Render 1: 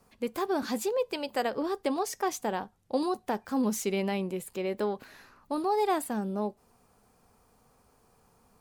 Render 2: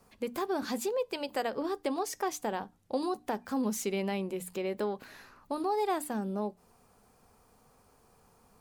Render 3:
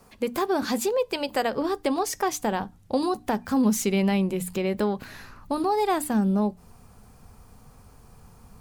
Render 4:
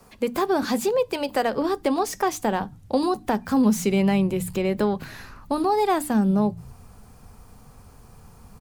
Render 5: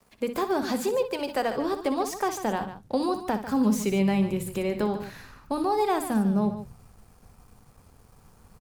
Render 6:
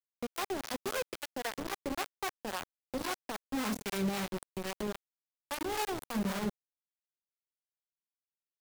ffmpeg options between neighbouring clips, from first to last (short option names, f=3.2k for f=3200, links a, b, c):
-filter_complex "[0:a]bandreject=f=60:t=h:w=6,bandreject=f=120:t=h:w=6,bandreject=f=180:t=h:w=6,bandreject=f=240:t=h:w=6,bandreject=f=300:t=h:w=6,asplit=2[a][b];[b]acompressor=threshold=-35dB:ratio=6,volume=2dB[c];[a][c]amix=inputs=2:normalize=0,volume=-6dB"
-af "asubboost=boost=3.5:cutoff=200,volume=8dB"
-filter_complex "[0:a]acrossover=split=200|1700[a][b][c];[a]asplit=7[d][e][f][g][h][i][j];[e]adelay=117,afreqshift=-41,volume=-12dB[k];[f]adelay=234,afreqshift=-82,volume=-17dB[l];[g]adelay=351,afreqshift=-123,volume=-22.1dB[m];[h]adelay=468,afreqshift=-164,volume=-27.1dB[n];[i]adelay=585,afreqshift=-205,volume=-32.1dB[o];[j]adelay=702,afreqshift=-246,volume=-37.2dB[p];[d][k][l][m][n][o][p]amix=inputs=7:normalize=0[q];[c]asoftclip=type=tanh:threshold=-30.5dB[r];[q][b][r]amix=inputs=3:normalize=0,volume=2.5dB"
-af "aeval=exprs='sgn(val(0))*max(abs(val(0))-0.002,0)':c=same,aecho=1:1:61.22|145.8:0.282|0.251,volume=-4dB"
-filter_complex "[0:a]acrusher=bits=3:mix=0:aa=0.000001,acrossover=split=550[a][b];[a]aeval=exprs='val(0)*(1-0.7/2+0.7/2*cos(2*PI*3.7*n/s))':c=same[c];[b]aeval=exprs='val(0)*(1-0.7/2-0.7/2*cos(2*PI*3.7*n/s))':c=same[d];[c][d]amix=inputs=2:normalize=0,volume=-8.5dB"